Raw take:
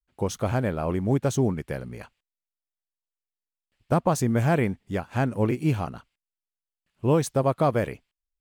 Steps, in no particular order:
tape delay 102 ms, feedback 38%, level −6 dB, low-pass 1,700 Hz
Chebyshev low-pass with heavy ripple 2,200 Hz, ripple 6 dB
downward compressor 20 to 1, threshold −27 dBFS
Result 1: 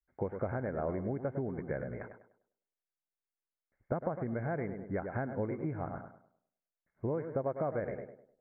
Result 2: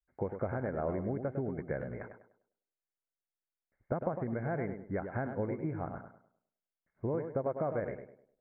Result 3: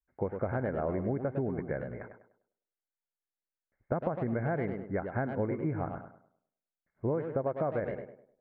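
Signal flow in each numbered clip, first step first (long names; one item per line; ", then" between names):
tape delay, then downward compressor, then Chebyshev low-pass with heavy ripple
downward compressor, then Chebyshev low-pass with heavy ripple, then tape delay
Chebyshev low-pass with heavy ripple, then tape delay, then downward compressor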